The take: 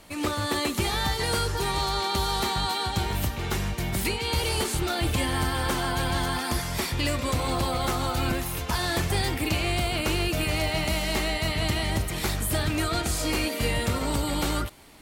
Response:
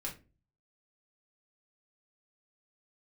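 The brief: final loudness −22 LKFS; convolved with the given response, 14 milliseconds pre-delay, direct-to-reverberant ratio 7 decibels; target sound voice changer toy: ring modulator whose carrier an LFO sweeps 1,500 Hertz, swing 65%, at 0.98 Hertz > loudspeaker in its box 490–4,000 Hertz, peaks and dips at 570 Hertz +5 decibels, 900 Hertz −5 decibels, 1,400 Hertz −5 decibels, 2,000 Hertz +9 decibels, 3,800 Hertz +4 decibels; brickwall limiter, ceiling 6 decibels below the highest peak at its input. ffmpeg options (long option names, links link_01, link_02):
-filter_complex "[0:a]alimiter=limit=-22dB:level=0:latency=1,asplit=2[link_01][link_02];[1:a]atrim=start_sample=2205,adelay=14[link_03];[link_02][link_03]afir=irnorm=-1:irlink=0,volume=-7dB[link_04];[link_01][link_04]amix=inputs=2:normalize=0,aeval=exprs='val(0)*sin(2*PI*1500*n/s+1500*0.65/0.98*sin(2*PI*0.98*n/s))':channel_layout=same,highpass=490,equalizer=frequency=570:width_type=q:width=4:gain=5,equalizer=frequency=900:width_type=q:width=4:gain=-5,equalizer=frequency=1400:width_type=q:width=4:gain=-5,equalizer=frequency=2000:width_type=q:width=4:gain=9,equalizer=frequency=3800:width_type=q:width=4:gain=4,lowpass=frequency=4000:width=0.5412,lowpass=frequency=4000:width=1.3066,volume=6.5dB"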